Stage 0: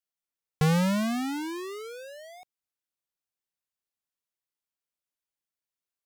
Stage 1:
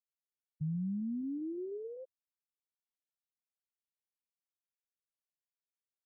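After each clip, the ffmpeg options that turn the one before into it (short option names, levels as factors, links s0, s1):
-af "areverse,acompressor=threshold=0.01:ratio=4,areverse,tiltshelf=f=970:g=6,afftfilt=real='re*gte(hypot(re,im),0.126)':imag='im*gte(hypot(re,im),0.126)':win_size=1024:overlap=0.75,volume=0.668"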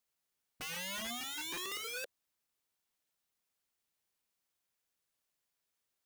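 -af "aeval=exprs='(mod(224*val(0)+1,2)-1)/224':c=same,volume=3.35"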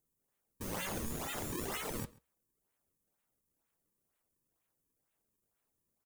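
-filter_complex "[0:a]acrossover=split=230|6400[s0][s1][s2];[s1]acrusher=samples=36:mix=1:aa=0.000001:lfo=1:lforange=57.6:lforate=2.1[s3];[s0][s3][s2]amix=inputs=3:normalize=0,flanger=delay=6.2:depth=7.8:regen=-77:speed=0.42:shape=sinusoidal,asplit=2[s4][s5];[s5]adelay=134.1,volume=0.0708,highshelf=f=4000:g=-3.02[s6];[s4][s6]amix=inputs=2:normalize=0,volume=2.24"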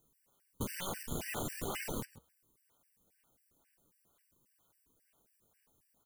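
-af "aeval=exprs='clip(val(0),-1,0.00631)':c=same,acompressor=threshold=0.00562:ratio=6,afftfilt=real='re*gt(sin(2*PI*3.7*pts/sr)*(1-2*mod(floor(b*sr/1024/1500),2)),0)':imag='im*gt(sin(2*PI*3.7*pts/sr)*(1-2*mod(floor(b*sr/1024/1500),2)),0)':win_size=1024:overlap=0.75,volume=3.98"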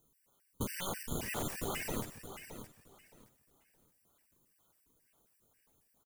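-af "aecho=1:1:619|1238|1857:0.299|0.0657|0.0144,volume=1.12"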